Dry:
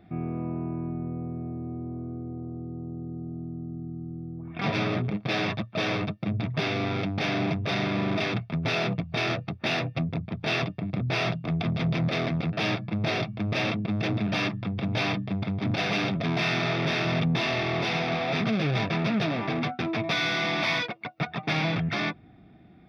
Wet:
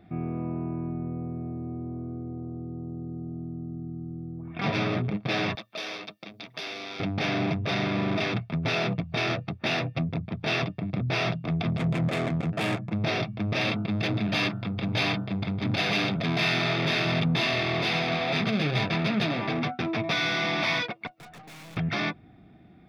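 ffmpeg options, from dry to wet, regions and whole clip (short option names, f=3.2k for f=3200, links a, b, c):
-filter_complex "[0:a]asettb=1/sr,asplit=3[a][b][c];[a]atrim=end=5.554[d];[b]atrim=start=5.55:end=7,asetpts=PTS-STARTPTS,afade=t=in:d=0.004:c=qsin,afade=t=out:st=1.446:d=0.004:c=qsin,highshelf=f=5.4k:g=10.5,acrossover=split=2600|5400[e][f][g];[e]acompressor=threshold=-36dB:ratio=4[h];[f]acompressor=threshold=-39dB:ratio=4[i];[g]acompressor=threshold=-50dB:ratio=4[j];[h][i][j]amix=inputs=3:normalize=0,highpass=350[k];[c]atrim=start=6.996[l];[d][k]acrossfade=d=0.004:c1=hsin:c2=qsin[m];[m][l]acrossfade=d=0.004:c1=qsin:c2=hsin,asettb=1/sr,asplit=3[n][o][p];[n]atrim=end=11.774[q];[o]atrim=start=11.77:end=12.93,asetpts=PTS-STARTPTS,afade=t=in:d=0.004:c=qsin,afade=t=out:st=1.156:d=0.004:c=qsin,highshelf=f=4.5k:g=-3.5,adynamicsmooth=sensitivity=4:basefreq=1.6k[r];[p]atrim=start=12.926[s];[q][r]acrossfade=d=0.004:c1=hsin:c2=qsin[t];[t][s]acrossfade=d=0.004:c1=qsin:c2=hsin,asettb=1/sr,asplit=3[u][v][w];[u]atrim=end=13.614[x];[v]atrim=start=13.61:end=19.51,asetpts=PTS-STARTPTS,afade=t=in:d=0.004:c=qsin,afade=t=out:st=5.896:d=0.004:c=qsin,highshelf=f=4.4k:g=8.5,bandreject=f=5.6k:w=7.7,bandreject=f=45.69:t=h:w=4,bandreject=f=91.38:t=h:w=4,bandreject=f=137.07:t=h:w=4,bandreject=f=182.76:t=h:w=4,bandreject=f=228.45:t=h:w=4,bandreject=f=274.14:t=h:w=4,bandreject=f=319.83:t=h:w=4,bandreject=f=365.52:t=h:w=4,bandreject=f=411.21:t=h:w=4,bandreject=f=456.9:t=h:w=4,bandreject=f=502.59:t=h:w=4,bandreject=f=548.28:t=h:w=4,bandreject=f=593.97:t=h:w=4,bandreject=f=639.66:t=h:w=4,bandreject=f=685.35:t=h:w=4,bandreject=f=731.04:t=h:w=4,bandreject=f=776.73:t=h:w=4,bandreject=f=822.42:t=h:w=4,bandreject=f=868.11:t=h:w=4,bandreject=f=913.8:t=h:w=4,bandreject=f=959.49:t=h:w=4,bandreject=f=1.00518k:t=h:w=4,bandreject=f=1.05087k:t=h:w=4,bandreject=f=1.09656k:t=h:w=4,bandreject=f=1.14225k:t=h:w=4,bandreject=f=1.18794k:t=h:w=4,bandreject=f=1.23363k:t=h:w=4,bandreject=f=1.27932k:t=h:w=4,bandreject=f=1.32501k:t=h:w=4,bandreject=f=1.3707k:t=h:w=4,bandreject=f=1.41639k:t=h:w=4,bandreject=f=1.46208k:t=h:w=4,bandreject=f=1.50777k:t=h:w=4,bandreject=f=1.55346k:t=h:w=4[y];[w]atrim=start=19.506[z];[x][y]acrossfade=d=0.004:c1=hsin:c2=qsin[aa];[aa][z]acrossfade=d=0.004:c1=qsin:c2=hsin,asettb=1/sr,asplit=3[ab][ac][ad];[ab]atrim=end=21.074[ae];[ac]atrim=start=21.07:end=21.77,asetpts=PTS-STARTPTS,afade=t=in:d=0.004:c=qsin,afade=t=out:st=0.696:d=0.004:c=qsin,highpass=85,aeval=exprs='(tanh(178*val(0)+0.25)-tanh(0.25))/178':c=same[af];[ad]atrim=start=21.766[ag];[ae][af]acrossfade=d=0.004:c1=hsin:c2=qsin[ah];[ah][ag]acrossfade=d=0.004:c1=qsin:c2=hsin"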